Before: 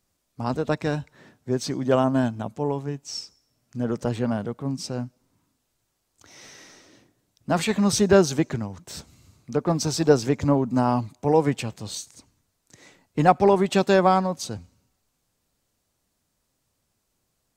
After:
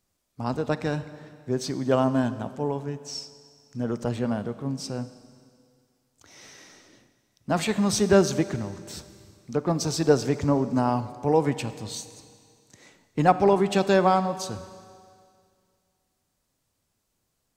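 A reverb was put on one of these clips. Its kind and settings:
four-comb reverb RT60 2.2 s, combs from 30 ms, DRR 13 dB
level −2 dB

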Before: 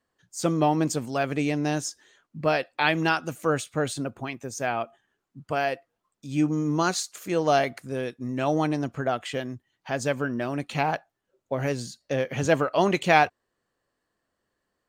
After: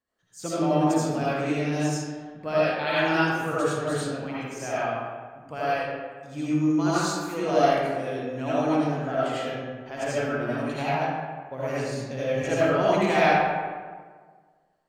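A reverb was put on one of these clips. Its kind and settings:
comb and all-pass reverb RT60 1.6 s, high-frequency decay 0.55×, pre-delay 40 ms, DRR −10 dB
level −10 dB

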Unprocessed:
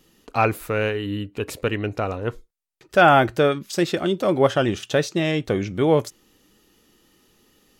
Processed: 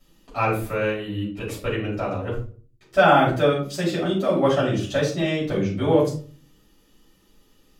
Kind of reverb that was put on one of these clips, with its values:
rectangular room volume 270 cubic metres, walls furnished, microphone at 6.4 metres
level −12 dB

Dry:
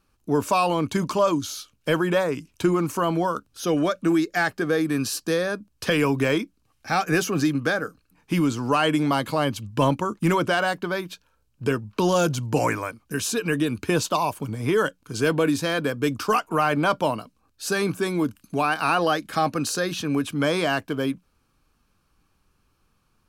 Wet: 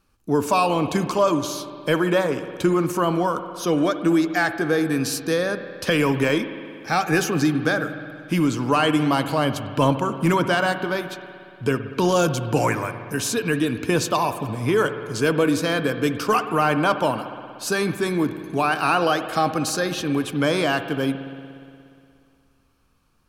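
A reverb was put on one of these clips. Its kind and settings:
spring reverb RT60 2.4 s, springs 59 ms, chirp 50 ms, DRR 9.5 dB
level +1.5 dB

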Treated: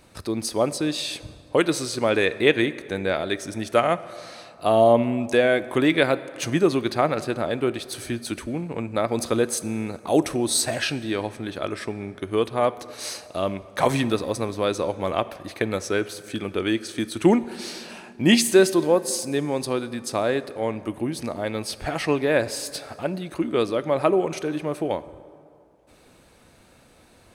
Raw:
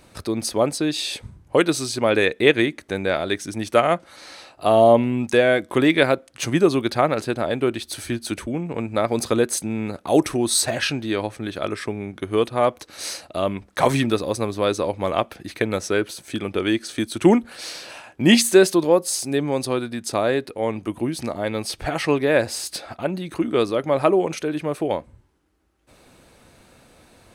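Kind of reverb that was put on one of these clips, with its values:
dense smooth reverb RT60 2.6 s, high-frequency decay 0.55×, DRR 15 dB
level −2.5 dB

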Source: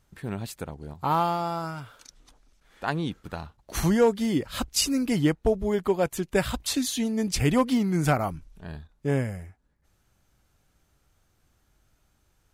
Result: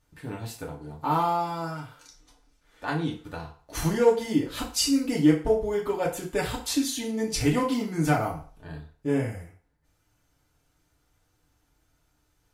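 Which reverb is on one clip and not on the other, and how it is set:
feedback delay network reverb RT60 0.44 s, low-frequency decay 0.7×, high-frequency decay 0.85×, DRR −3 dB
level −5.5 dB

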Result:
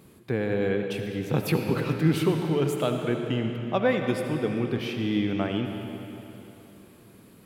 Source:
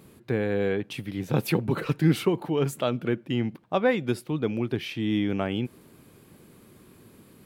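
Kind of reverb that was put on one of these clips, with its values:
comb and all-pass reverb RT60 3.2 s, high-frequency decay 0.85×, pre-delay 35 ms, DRR 4 dB
level −1 dB

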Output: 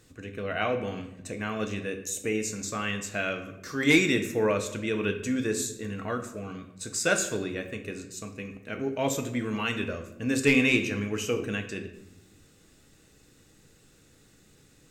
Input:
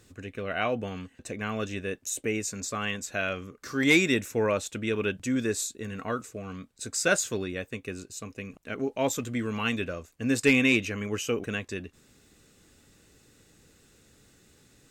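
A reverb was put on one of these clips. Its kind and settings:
rectangular room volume 250 cubic metres, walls mixed, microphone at 0.59 metres
level −1 dB

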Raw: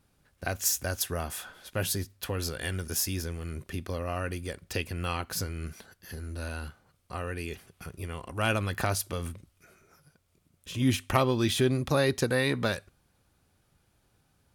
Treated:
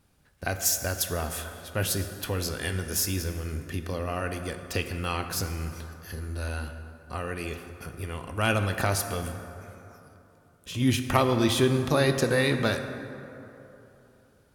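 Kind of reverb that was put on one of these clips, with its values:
dense smooth reverb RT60 3.2 s, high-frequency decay 0.45×, DRR 7 dB
level +2 dB

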